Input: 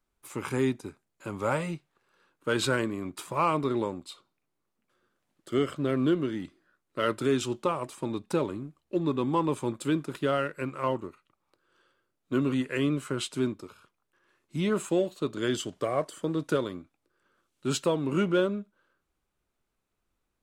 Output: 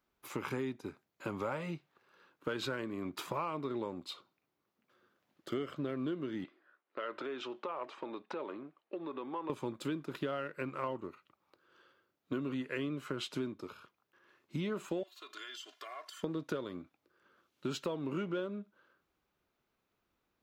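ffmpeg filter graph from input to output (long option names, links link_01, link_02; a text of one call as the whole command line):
ffmpeg -i in.wav -filter_complex "[0:a]asettb=1/sr,asplit=3[link_01][link_02][link_03];[link_01]atrim=end=6.444[link_04];[link_02]atrim=start=6.44:end=9.5,asetpts=PTS-STARTPTS,afade=type=in:duration=0.004:curve=qsin,afade=type=out:start_time=3.056:duration=0.004:curve=qsin,acompressor=threshold=-33dB:ratio=6:attack=3.2:release=140:knee=1:detection=peak,highpass=430,lowpass=2900[link_05];[link_03]atrim=start=9.496[link_06];[link_04][link_05]acrossfade=duration=0.004:curve1=hsin:curve2=qsin[link_07];[link_07][link_06]acrossfade=duration=0.004:curve1=qsin:curve2=hsin,asettb=1/sr,asplit=3[link_08][link_09][link_10];[link_08]atrim=end=15.034[link_11];[link_09]atrim=start=15.03:end=16.23,asetpts=PTS-STARTPTS,afade=type=in:duration=0.004:curve=qsin,afade=type=out:start_time=1.196:duration=0.004:curve=qsin,highpass=1400,acompressor=threshold=-46dB:ratio=8:attack=3.2:release=140:knee=1:detection=peak,aecho=1:1:2.9:0.81,atrim=end_sample=52920[link_12];[link_10]atrim=start=16.226[link_13];[link_11][link_12]acrossfade=duration=0.004:curve1=hsin:curve2=qsin[link_14];[link_14][link_13]acrossfade=duration=0.004:curve1=qsin:curve2=hsin,highpass=frequency=140:poles=1,equalizer=frequency=8800:width=1.7:gain=-14.5,acompressor=threshold=-37dB:ratio=6,volume=2.5dB" out.wav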